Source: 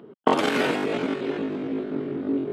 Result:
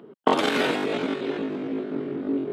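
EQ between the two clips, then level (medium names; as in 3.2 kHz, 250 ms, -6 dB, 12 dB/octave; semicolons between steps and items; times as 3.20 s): high-pass 87 Hz; bass shelf 130 Hz -4 dB; dynamic bell 3.7 kHz, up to +5 dB, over -52 dBFS, Q 4.3; 0.0 dB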